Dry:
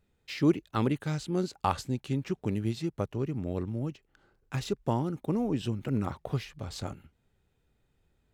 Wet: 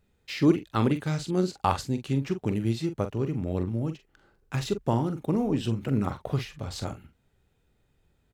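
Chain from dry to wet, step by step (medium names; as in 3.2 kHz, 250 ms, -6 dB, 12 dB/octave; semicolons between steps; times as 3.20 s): doubling 44 ms -9.5 dB; trim +3 dB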